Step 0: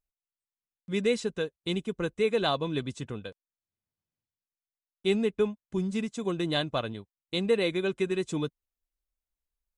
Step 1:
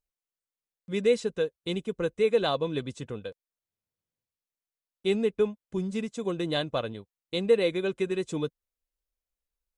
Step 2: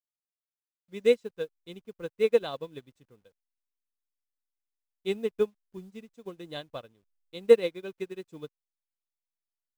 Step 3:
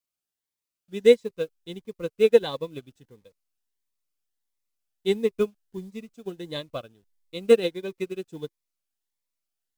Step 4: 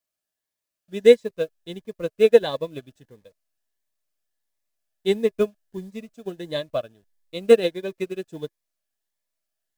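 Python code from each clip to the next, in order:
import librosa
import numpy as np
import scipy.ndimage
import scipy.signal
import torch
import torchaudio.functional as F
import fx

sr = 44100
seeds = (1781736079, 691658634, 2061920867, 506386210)

y1 = fx.peak_eq(x, sr, hz=500.0, db=6.5, octaves=0.44)
y1 = y1 * librosa.db_to_amplitude(-1.5)
y2 = fx.delta_hold(y1, sr, step_db=-46.0)
y2 = fx.upward_expand(y2, sr, threshold_db=-37.0, expansion=2.5)
y2 = y2 * librosa.db_to_amplitude(5.5)
y3 = fx.vibrato(y2, sr, rate_hz=1.6, depth_cents=9.4)
y3 = fx.notch_cascade(y3, sr, direction='rising', hz=1.5)
y3 = y3 * librosa.db_to_amplitude(7.0)
y4 = fx.small_body(y3, sr, hz=(630.0, 1700.0), ring_ms=40, db=11)
y4 = y4 * librosa.db_to_amplitude(2.0)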